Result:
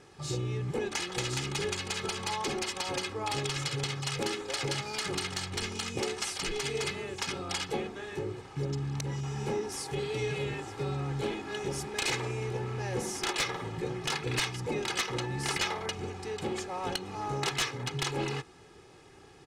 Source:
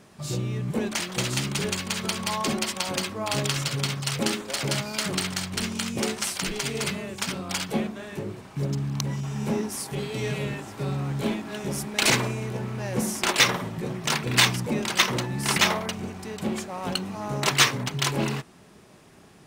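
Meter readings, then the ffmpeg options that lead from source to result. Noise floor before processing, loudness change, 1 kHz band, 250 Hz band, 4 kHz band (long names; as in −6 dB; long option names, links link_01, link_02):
−52 dBFS, −7.0 dB, −5.5 dB, −9.0 dB, −7.5 dB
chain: -af "aecho=1:1:2.4:0.68,acompressor=threshold=-26dB:ratio=3,aeval=exprs='(mod(6.31*val(0)+1,2)-1)/6.31':channel_layout=same,lowpass=7900,volume=-3dB"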